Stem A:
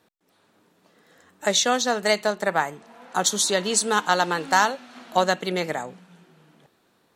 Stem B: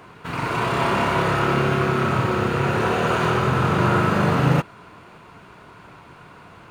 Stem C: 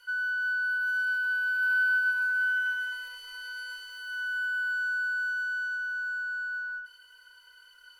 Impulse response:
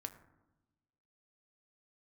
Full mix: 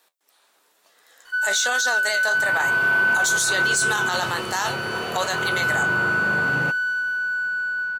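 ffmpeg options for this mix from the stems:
-filter_complex "[0:a]highpass=680,highshelf=frequency=5100:gain=10.5,flanger=delay=9.9:depth=8.2:regen=57:speed=1.1:shape=triangular,volume=-1dB[link_01];[1:a]lowshelf=frequency=170:gain=-8.5,adelay=2100,volume=-14dB[link_02];[2:a]adelay=1250,volume=1.5dB[link_03];[link_01][link_02][link_03]amix=inputs=3:normalize=0,acontrast=69,alimiter=limit=-13dB:level=0:latency=1:release=12"

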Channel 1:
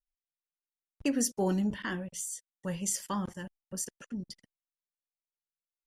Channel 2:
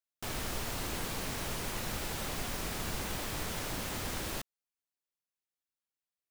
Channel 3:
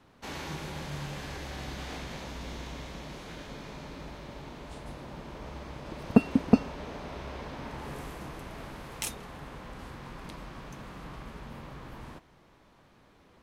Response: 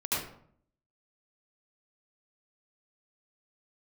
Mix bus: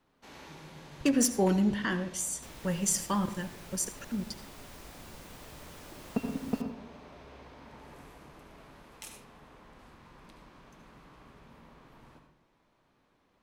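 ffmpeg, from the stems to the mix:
-filter_complex "[0:a]aeval=exprs='0.0891*(abs(mod(val(0)/0.0891+3,4)-2)-1)':channel_layout=same,volume=3dB,asplit=2[link_01][link_02];[link_02]volume=-19dB[link_03];[1:a]adelay=2200,volume=-13.5dB,asplit=2[link_04][link_05];[link_05]volume=-21.5dB[link_06];[2:a]equalizer=frequency=74:width=0.87:gain=-6,volume=-13dB,asplit=2[link_07][link_08];[link_08]volume=-10dB[link_09];[3:a]atrim=start_sample=2205[link_10];[link_03][link_06][link_09]amix=inputs=3:normalize=0[link_11];[link_11][link_10]afir=irnorm=-1:irlink=0[link_12];[link_01][link_04][link_07][link_12]amix=inputs=4:normalize=0"

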